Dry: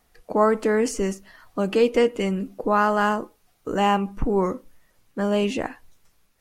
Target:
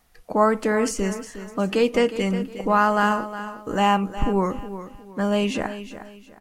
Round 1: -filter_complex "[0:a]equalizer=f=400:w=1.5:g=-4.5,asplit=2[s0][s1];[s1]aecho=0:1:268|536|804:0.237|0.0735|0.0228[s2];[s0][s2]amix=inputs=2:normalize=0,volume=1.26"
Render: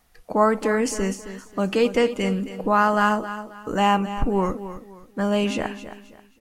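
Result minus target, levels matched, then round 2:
echo 93 ms early
-filter_complex "[0:a]equalizer=f=400:w=1.5:g=-4.5,asplit=2[s0][s1];[s1]aecho=0:1:361|722|1083:0.237|0.0735|0.0228[s2];[s0][s2]amix=inputs=2:normalize=0,volume=1.26"

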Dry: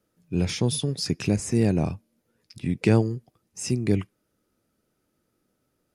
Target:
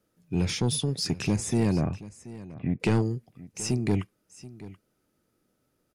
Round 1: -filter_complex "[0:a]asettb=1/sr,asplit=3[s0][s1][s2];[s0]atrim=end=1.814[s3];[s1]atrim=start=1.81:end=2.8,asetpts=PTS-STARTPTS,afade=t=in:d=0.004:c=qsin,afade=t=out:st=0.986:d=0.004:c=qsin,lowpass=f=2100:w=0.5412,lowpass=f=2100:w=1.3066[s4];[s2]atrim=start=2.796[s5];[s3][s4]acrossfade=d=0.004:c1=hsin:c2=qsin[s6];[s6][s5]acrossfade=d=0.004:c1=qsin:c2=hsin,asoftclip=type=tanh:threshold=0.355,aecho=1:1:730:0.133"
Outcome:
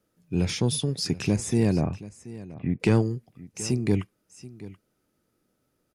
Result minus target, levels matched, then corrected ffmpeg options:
saturation: distortion -9 dB
-filter_complex "[0:a]asettb=1/sr,asplit=3[s0][s1][s2];[s0]atrim=end=1.814[s3];[s1]atrim=start=1.81:end=2.8,asetpts=PTS-STARTPTS,afade=t=in:d=0.004:c=qsin,afade=t=out:st=0.986:d=0.004:c=qsin,lowpass=f=2100:w=0.5412,lowpass=f=2100:w=1.3066[s4];[s2]atrim=start=2.796[s5];[s3][s4]acrossfade=d=0.004:c1=hsin:c2=qsin[s6];[s6][s5]acrossfade=d=0.004:c1=qsin:c2=hsin,asoftclip=type=tanh:threshold=0.15,aecho=1:1:730:0.133"

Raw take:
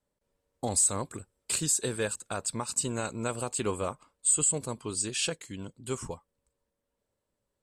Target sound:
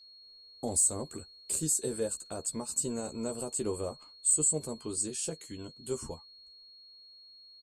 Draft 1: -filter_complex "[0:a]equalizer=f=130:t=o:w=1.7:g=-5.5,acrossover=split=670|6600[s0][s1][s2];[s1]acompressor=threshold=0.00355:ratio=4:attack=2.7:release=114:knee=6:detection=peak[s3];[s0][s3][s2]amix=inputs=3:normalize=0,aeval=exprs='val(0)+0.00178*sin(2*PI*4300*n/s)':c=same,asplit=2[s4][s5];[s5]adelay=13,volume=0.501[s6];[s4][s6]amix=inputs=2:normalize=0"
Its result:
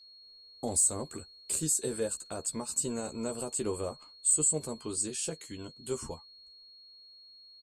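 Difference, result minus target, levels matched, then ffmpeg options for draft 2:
compression: peak gain reduction -4.5 dB
-filter_complex "[0:a]equalizer=f=130:t=o:w=1.7:g=-5.5,acrossover=split=670|6600[s0][s1][s2];[s1]acompressor=threshold=0.00178:ratio=4:attack=2.7:release=114:knee=6:detection=peak[s3];[s0][s3][s2]amix=inputs=3:normalize=0,aeval=exprs='val(0)+0.00178*sin(2*PI*4300*n/s)':c=same,asplit=2[s4][s5];[s5]adelay=13,volume=0.501[s6];[s4][s6]amix=inputs=2:normalize=0"

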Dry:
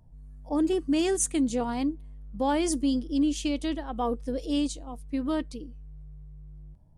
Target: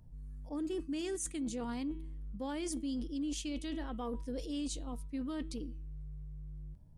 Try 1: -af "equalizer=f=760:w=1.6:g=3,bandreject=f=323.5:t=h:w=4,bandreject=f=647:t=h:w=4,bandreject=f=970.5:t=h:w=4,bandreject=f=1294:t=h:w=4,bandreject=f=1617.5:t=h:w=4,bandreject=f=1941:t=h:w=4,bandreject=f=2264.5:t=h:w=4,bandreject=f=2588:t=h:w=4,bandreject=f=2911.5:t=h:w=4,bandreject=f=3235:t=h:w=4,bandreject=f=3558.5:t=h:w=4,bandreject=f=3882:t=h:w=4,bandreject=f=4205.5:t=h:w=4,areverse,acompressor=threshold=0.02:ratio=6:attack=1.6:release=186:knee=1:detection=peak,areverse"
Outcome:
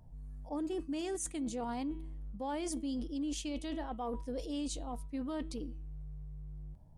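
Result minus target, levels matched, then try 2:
1 kHz band +5.0 dB
-af "equalizer=f=760:w=1.6:g=-7.5,bandreject=f=323.5:t=h:w=4,bandreject=f=647:t=h:w=4,bandreject=f=970.5:t=h:w=4,bandreject=f=1294:t=h:w=4,bandreject=f=1617.5:t=h:w=4,bandreject=f=1941:t=h:w=4,bandreject=f=2264.5:t=h:w=4,bandreject=f=2588:t=h:w=4,bandreject=f=2911.5:t=h:w=4,bandreject=f=3235:t=h:w=4,bandreject=f=3558.5:t=h:w=4,bandreject=f=3882:t=h:w=4,bandreject=f=4205.5:t=h:w=4,areverse,acompressor=threshold=0.02:ratio=6:attack=1.6:release=186:knee=1:detection=peak,areverse"

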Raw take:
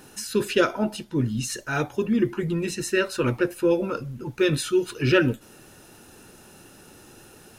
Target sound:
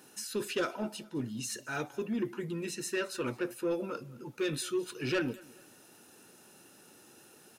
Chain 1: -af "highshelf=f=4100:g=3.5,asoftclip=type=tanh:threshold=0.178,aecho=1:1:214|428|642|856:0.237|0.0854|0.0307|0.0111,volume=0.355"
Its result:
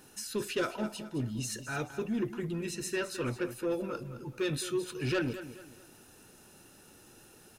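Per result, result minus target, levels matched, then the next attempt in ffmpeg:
echo-to-direct +10 dB; 125 Hz band +4.5 dB
-af "highshelf=f=4100:g=3.5,asoftclip=type=tanh:threshold=0.178,aecho=1:1:214|428:0.075|0.027,volume=0.355"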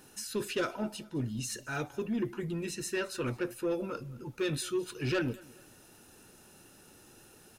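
125 Hz band +4.5 dB
-af "highpass=170,highshelf=f=4100:g=3.5,asoftclip=type=tanh:threshold=0.178,aecho=1:1:214|428:0.075|0.027,volume=0.355"

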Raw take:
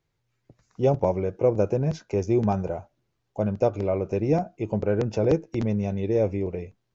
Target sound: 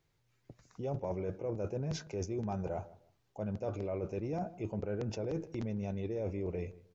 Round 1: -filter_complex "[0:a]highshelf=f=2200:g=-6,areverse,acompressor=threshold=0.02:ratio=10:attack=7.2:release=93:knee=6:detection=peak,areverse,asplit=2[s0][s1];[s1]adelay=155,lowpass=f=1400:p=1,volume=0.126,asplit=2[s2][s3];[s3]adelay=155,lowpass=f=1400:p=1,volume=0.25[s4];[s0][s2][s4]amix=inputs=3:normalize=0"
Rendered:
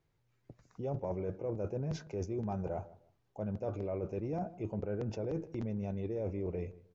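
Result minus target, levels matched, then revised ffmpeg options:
4 kHz band -6.0 dB
-filter_complex "[0:a]highshelf=f=2200:g=2,areverse,acompressor=threshold=0.02:ratio=10:attack=7.2:release=93:knee=6:detection=peak,areverse,asplit=2[s0][s1];[s1]adelay=155,lowpass=f=1400:p=1,volume=0.126,asplit=2[s2][s3];[s3]adelay=155,lowpass=f=1400:p=1,volume=0.25[s4];[s0][s2][s4]amix=inputs=3:normalize=0"

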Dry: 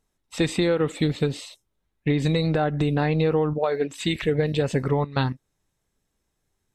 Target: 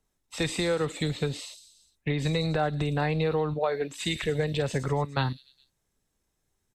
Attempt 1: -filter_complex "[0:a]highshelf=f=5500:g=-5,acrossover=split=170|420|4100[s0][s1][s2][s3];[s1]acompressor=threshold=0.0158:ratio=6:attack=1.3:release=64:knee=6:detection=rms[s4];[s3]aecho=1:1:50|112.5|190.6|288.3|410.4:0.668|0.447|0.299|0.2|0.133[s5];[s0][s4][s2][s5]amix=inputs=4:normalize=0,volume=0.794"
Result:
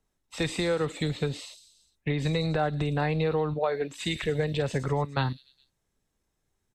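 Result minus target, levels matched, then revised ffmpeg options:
8 kHz band -3.0 dB
-filter_complex "[0:a]acrossover=split=170|420|4100[s0][s1][s2][s3];[s1]acompressor=threshold=0.0158:ratio=6:attack=1.3:release=64:knee=6:detection=rms[s4];[s3]aecho=1:1:50|112.5|190.6|288.3|410.4:0.668|0.447|0.299|0.2|0.133[s5];[s0][s4][s2][s5]amix=inputs=4:normalize=0,volume=0.794"

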